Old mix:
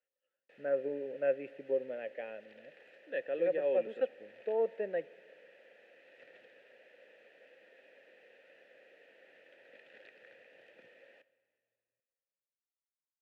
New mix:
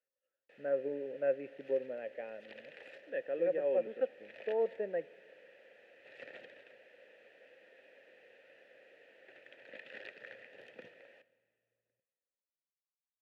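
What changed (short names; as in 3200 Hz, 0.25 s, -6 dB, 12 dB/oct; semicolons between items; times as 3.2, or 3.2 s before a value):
speech: add air absorption 360 m; second sound +10.0 dB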